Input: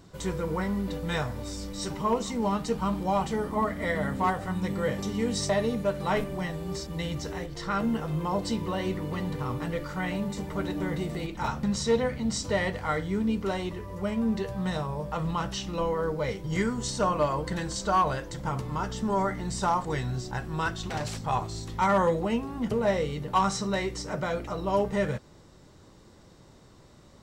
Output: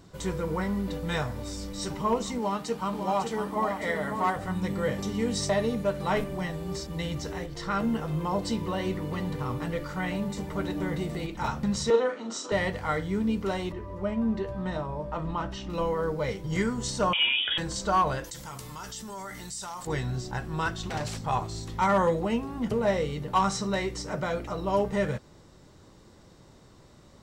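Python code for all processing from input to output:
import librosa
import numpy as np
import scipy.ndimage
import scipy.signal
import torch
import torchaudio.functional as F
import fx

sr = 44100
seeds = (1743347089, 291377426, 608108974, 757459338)

y = fx.chain(x, sr, fx.highpass(hz=290.0, slope=6),
    fx.echo_single(ms=550, db=-7.0), at=(2.38, 4.36))
y = fx.chain(y, sr, fx.cabinet(low_hz=300.0, low_slope=24, high_hz=7100.0, hz=(350.0, 1300.0, 2100.0, 4700.0), db=(5, 9, -8, -9)),
    fx.doubler(ms=39.0, db=-6), at=(11.9, 12.52))
y = fx.chain(y, sr, fx.lowpass(hz=1700.0, slope=6),
    fx.comb(ms=3.2, depth=0.39), at=(13.72, 15.7))
y = fx.chain(y, sr, fx.highpass(hz=200.0, slope=6),
    fx.freq_invert(carrier_hz=3500),
    fx.env_flatten(amount_pct=50), at=(17.13, 17.58))
y = fx.chain(y, sr, fx.pre_emphasis(coefficient=0.9),
    fx.env_flatten(amount_pct=70), at=(18.24, 19.87))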